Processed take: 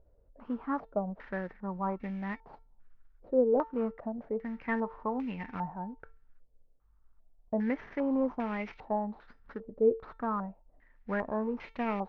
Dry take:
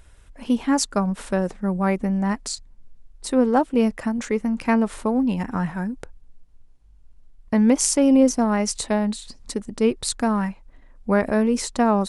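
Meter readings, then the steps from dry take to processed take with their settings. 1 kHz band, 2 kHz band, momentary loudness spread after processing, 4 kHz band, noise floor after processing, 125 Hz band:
-9.5 dB, -10.0 dB, 13 LU, under -25 dB, -64 dBFS, -14.5 dB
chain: CVSD 32 kbps; resonator 450 Hz, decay 0.32 s, harmonics all, mix 60%; stepped low-pass 2.5 Hz 550–2300 Hz; gain -7 dB

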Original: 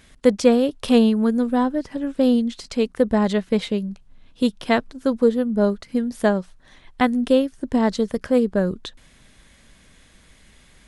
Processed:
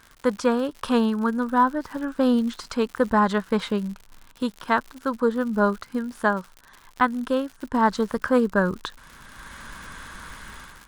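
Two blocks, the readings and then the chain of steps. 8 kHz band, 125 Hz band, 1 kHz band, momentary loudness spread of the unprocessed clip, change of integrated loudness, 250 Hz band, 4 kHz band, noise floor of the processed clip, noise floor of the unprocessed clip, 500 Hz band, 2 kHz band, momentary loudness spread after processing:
n/a, -3.5 dB, +4.5 dB, 9 LU, -3.0 dB, -4.5 dB, -4.5 dB, -53 dBFS, -53 dBFS, -4.5 dB, +3.0 dB, 19 LU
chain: band shelf 1200 Hz +13.5 dB 1.1 oct; AGC gain up to 16 dB; crackle 130/s -27 dBFS; gain -7 dB

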